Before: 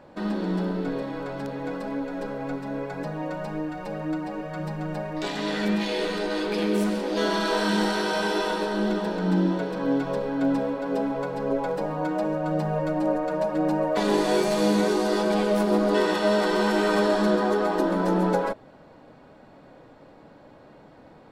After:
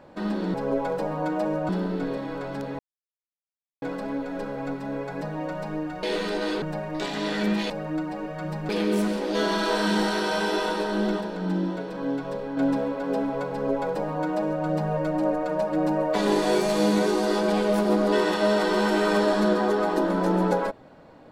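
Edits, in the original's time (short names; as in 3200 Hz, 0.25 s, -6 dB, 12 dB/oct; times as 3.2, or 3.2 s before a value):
1.64 insert silence 1.03 s
3.85–4.84 swap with 5.92–6.51
9.03–10.39 gain -4 dB
11.33–12.48 copy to 0.54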